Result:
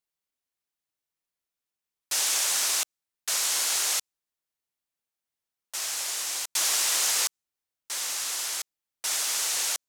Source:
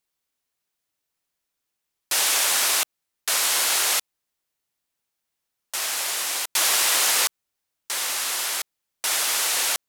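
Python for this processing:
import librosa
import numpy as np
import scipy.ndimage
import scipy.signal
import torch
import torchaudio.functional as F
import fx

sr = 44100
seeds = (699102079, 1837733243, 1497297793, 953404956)

y = fx.dynamic_eq(x, sr, hz=6500.0, q=0.98, threshold_db=-37.0, ratio=4.0, max_db=7)
y = F.gain(torch.from_numpy(y), -8.5).numpy()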